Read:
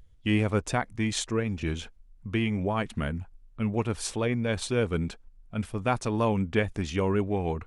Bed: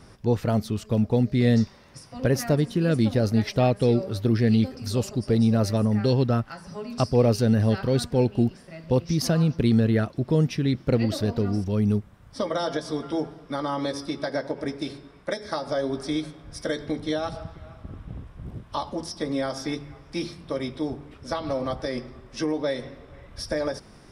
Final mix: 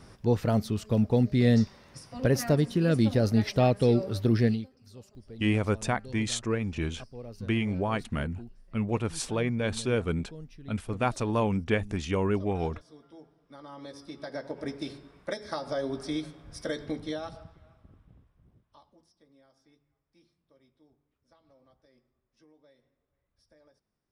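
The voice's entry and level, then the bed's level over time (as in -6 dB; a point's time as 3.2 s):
5.15 s, -1.0 dB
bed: 4.46 s -2 dB
4.7 s -23.5 dB
13.23 s -23.5 dB
14.69 s -5 dB
16.93 s -5 dB
19.29 s -35 dB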